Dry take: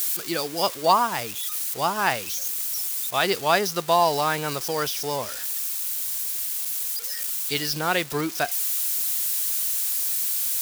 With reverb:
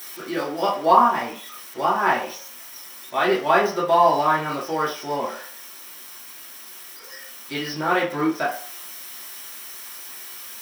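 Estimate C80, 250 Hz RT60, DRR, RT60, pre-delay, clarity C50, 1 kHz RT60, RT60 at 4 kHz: 12.0 dB, 0.40 s, -6.5 dB, 0.45 s, 3 ms, 7.0 dB, 0.45 s, 0.45 s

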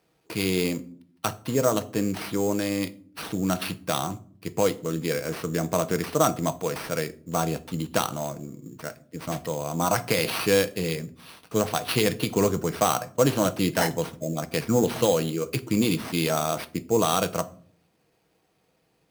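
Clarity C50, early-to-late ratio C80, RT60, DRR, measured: 19.5 dB, 23.5 dB, 0.50 s, 10.5 dB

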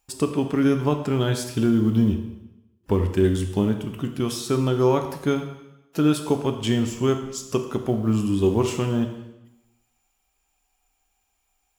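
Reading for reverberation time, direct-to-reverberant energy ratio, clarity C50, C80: 0.95 s, 5.5 dB, 8.5 dB, 10.5 dB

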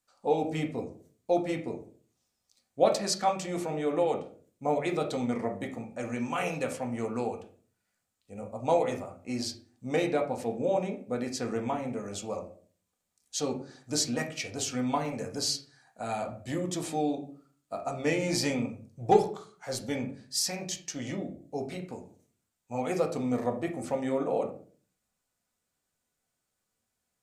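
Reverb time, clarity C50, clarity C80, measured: 0.45 s, 10.5 dB, 15.5 dB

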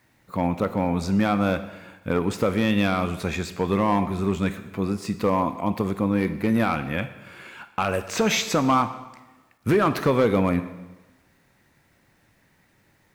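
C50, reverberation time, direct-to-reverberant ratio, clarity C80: 12.5 dB, 1.1 s, 10.0 dB, 14.0 dB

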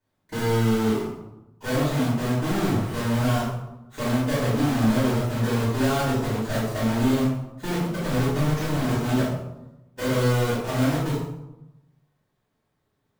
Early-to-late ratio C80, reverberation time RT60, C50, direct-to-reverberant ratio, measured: 3.5 dB, 0.95 s, -0.5 dB, -12.0 dB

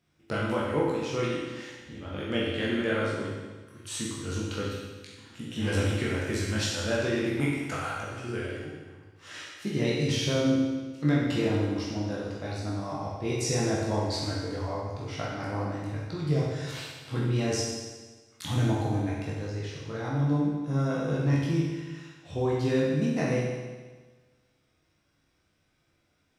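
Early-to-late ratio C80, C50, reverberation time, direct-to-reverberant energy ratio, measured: 2.0 dB, -0.5 dB, 1.4 s, -6.0 dB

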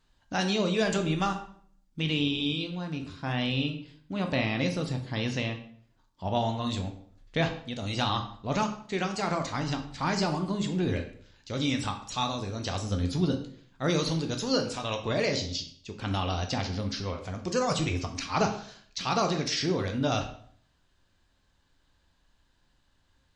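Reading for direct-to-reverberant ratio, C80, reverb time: 4.0 dB, 13.0 dB, 0.55 s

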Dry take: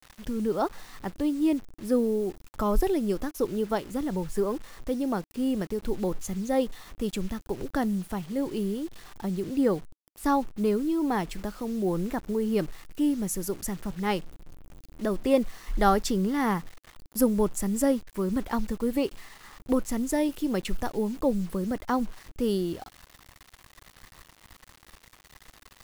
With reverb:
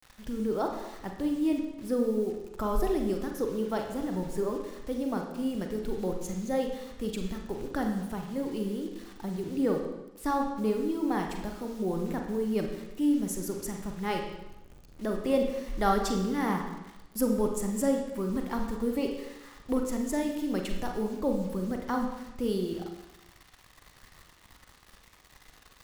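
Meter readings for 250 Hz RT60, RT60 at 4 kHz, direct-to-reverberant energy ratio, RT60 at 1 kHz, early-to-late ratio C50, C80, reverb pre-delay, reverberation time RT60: 0.95 s, 0.95 s, 2.5 dB, 0.95 s, 5.0 dB, 7.5 dB, 35 ms, 0.95 s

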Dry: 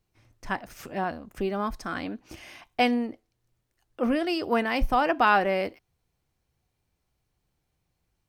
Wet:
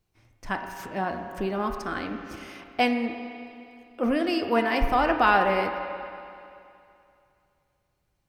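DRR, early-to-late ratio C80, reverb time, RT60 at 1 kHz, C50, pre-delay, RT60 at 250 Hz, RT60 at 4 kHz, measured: 4.0 dB, 6.5 dB, 2.6 s, 2.6 s, 5.5 dB, 7 ms, 2.6 s, 2.6 s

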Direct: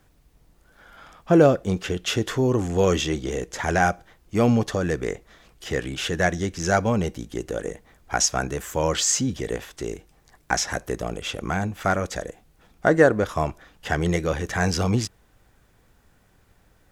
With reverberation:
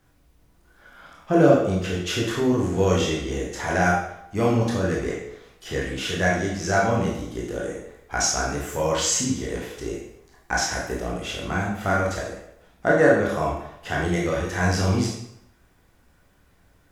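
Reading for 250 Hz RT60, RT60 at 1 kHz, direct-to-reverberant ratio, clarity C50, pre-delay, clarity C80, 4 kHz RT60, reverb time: 0.65 s, 0.80 s, -4.0 dB, 2.5 dB, 18 ms, 5.5 dB, 0.65 s, 0.80 s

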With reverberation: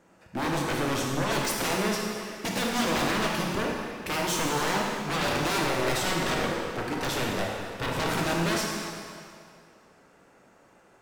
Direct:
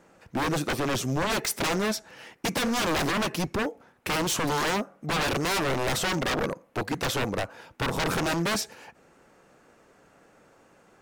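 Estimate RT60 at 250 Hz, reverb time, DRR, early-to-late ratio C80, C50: 2.1 s, 2.3 s, -2.0 dB, 1.5 dB, 0.0 dB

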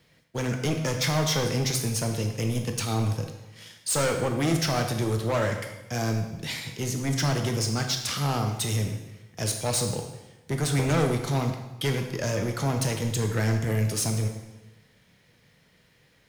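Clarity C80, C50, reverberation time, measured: 8.5 dB, 6.5 dB, 1.0 s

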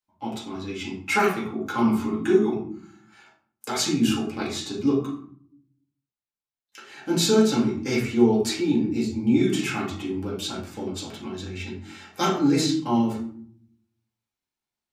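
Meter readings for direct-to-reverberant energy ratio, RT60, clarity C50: -7.0 dB, 0.60 s, 5.0 dB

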